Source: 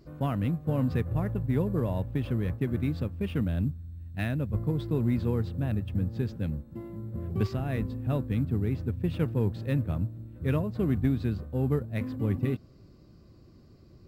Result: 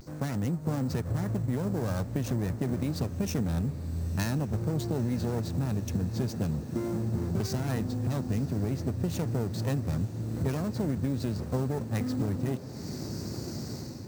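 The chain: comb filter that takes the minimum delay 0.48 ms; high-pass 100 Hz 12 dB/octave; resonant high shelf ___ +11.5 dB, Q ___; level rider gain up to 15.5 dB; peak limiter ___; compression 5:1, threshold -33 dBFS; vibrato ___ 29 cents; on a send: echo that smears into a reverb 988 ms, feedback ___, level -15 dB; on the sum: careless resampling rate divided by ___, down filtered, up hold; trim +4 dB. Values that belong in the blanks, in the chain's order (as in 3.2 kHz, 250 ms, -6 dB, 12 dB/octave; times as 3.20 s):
4.3 kHz, 1.5, -8.5 dBFS, 0.47 Hz, 75%, 2×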